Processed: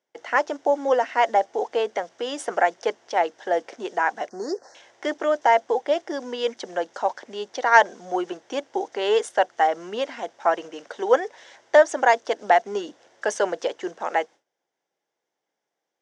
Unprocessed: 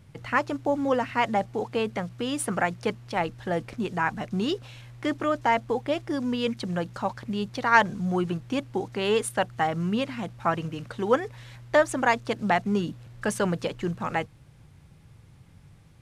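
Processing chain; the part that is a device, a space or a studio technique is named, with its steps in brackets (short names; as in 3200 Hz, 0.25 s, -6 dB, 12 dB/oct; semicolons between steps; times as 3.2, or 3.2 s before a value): phone speaker on a table (speaker cabinet 370–6700 Hz, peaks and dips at 700 Hz +4 dB, 1200 Hz -8 dB, 2500 Hz -9 dB, 4200 Hz -8 dB, 6000 Hz +5 dB); gate with hold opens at -54 dBFS; 4.29–4.75 Chebyshev band-stop 1900–4400 Hz, order 4; bell 100 Hz -3.5 dB 2.6 oct; gain +5.5 dB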